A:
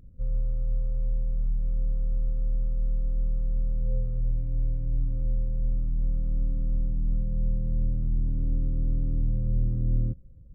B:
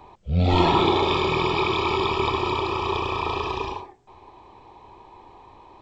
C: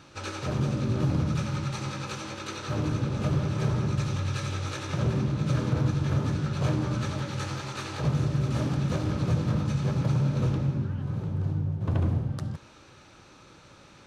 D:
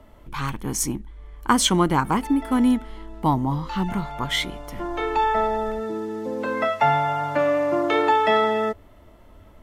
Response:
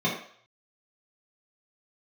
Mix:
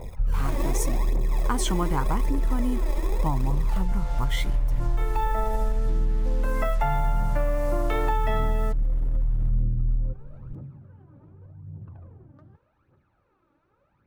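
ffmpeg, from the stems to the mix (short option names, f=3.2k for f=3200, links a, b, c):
-filter_complex "[0:a]aphaser=in_gain=1:out_gain=1:delay=2.5:decay=0.73:speed=0.83:type=triangular,volume=1dB[a];[1:a]acrusher=samples=30:mix=1:aa=0.000001,volume=-1dB[b];[2:a]lowpass=1.8k,alimiter=limit=-24dB:level=0:latency=1,volume=-16dB[c];[3:a]asubboost=boost=5:cutoff=120,acrusher=bits=5:mix=0:aa=0.5,volume=1.5dB[d];[b][c]amix=inputs=2:normalize=0,aphaser=in_gain=1:out_gain=1:delay=3.6:decay=0.66:speed=0.85:type=triangular,acompressor=threshold=-26dB:ratio=3,volume=0dB[e];[a][d][e]amix=inputs=3:normalize=0,equalizer=f=3.6k:w=0.73:g=-5.5,acompressor=threshold=-20dB:ratio=6"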